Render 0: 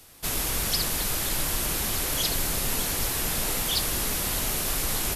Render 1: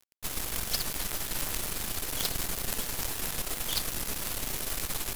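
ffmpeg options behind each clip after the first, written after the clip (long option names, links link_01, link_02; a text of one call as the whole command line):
ffmpeg -i in.wav -af "acrusher=bits=4:dc=4:mix=0:aa=0.000001,volume=-3dB" out.wav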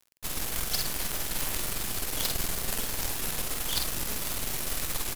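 ffmpeg -i in.wav -filter_complex "[0:a]asplit=2[link_01][link_02];[link_02]adelay=48,volume=-4dB[link_03];[link_01][link_03]amix=inputs=2:normalize=0" out.wav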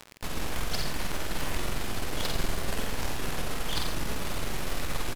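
ffmpeg -i in.wav -filter_complex "[0:a]aemphasis=mode=reproduction:type=75kf,acompressor=mode=upward:threshold=-33dB:ratio=2.5,asplit=2[link_01][link_02];[link_02]aecho=0:1:88:0.447[link_03];[link_01][link_03]amix=inputs=2:normalize=0,volume=3.5dB" out.wav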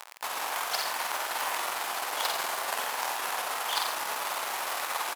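ffmpeg -i in.wav -af "crystalizer=i=2:c=0,highpass=frequency=870:width_type=q:width=2,highshelf=frequency=3100:gain=-10,volume=3.5dB" out.wav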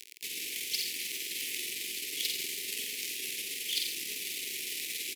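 ffmpeg -i in.wav -af "asuperstop=centerf=950:order=12:qfactor=0.54" out.wav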